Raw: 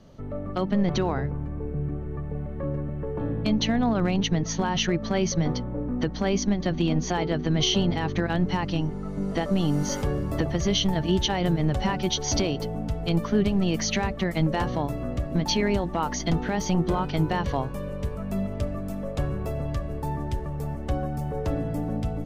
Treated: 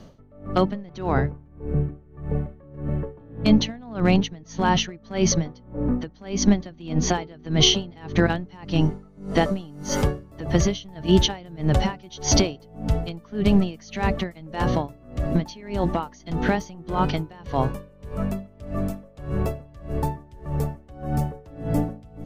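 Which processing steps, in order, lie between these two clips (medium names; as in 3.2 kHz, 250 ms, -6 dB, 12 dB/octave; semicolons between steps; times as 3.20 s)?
logarithmic tremolo 1.7 Hz, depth 27 dB; trim +8 dB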